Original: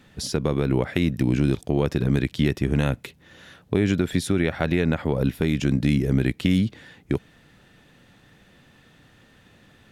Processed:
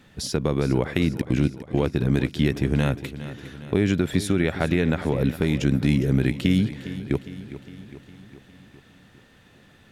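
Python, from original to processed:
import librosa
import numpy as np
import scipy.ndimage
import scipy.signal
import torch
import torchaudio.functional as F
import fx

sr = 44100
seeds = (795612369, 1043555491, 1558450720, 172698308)

y = fx.step_gate(x, sr, bpm=173, pattern='x...xx.x', floor_db=-24.0, edge_ms=4.5, at=(1.07, 1.93), fade=0.02)
y = fx.echo_feedback(y, sr, ms=408, feedback_pct=58, wet_db=-14)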